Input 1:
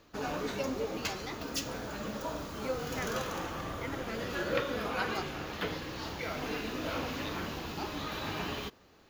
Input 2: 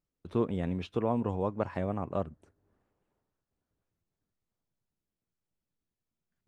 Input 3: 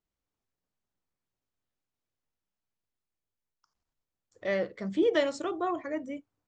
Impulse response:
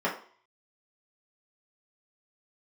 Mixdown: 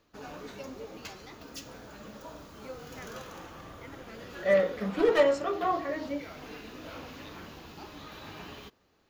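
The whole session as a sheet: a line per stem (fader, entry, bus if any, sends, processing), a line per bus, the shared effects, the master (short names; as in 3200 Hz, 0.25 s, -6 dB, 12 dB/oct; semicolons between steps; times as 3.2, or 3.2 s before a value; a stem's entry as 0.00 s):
-8.0 dB, 0.00 s, no send, dry
off
-4.0 dB, 0.00 s, send -7.5 dB, one-sided fold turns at -21 dBFS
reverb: on, RT60 0.50 s, pre-delay 3 ms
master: dry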